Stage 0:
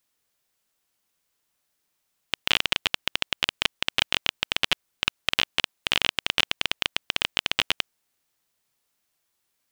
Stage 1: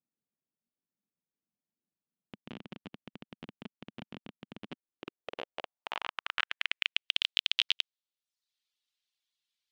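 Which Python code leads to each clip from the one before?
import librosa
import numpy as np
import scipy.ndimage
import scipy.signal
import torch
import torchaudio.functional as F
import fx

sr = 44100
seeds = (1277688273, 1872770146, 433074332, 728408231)

y = fx.filter_sweep_bandpass(x, sr, from_hz=210.0, to_hz=3600.0, start_s=4.58, end_s=7.24, q=2.4)
y = fx.dereverb_blind(y, sr, rt60_s=0.66)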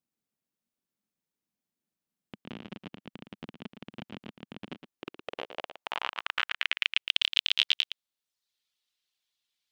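y = x + 10.0 ** (-9.5 / 20.0) * np.pad(x, (int(114 * sr / 1000.0), 0))[:len(x)]
y = y * librosa.db_to_amplitude(3.0)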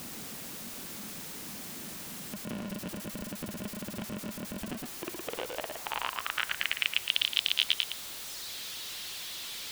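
y = x + 0.5 * 10.0 ** (-31.0 / 20.0) * np.sign(x)
y = y * librosa.db_to_amplitude(-2.5)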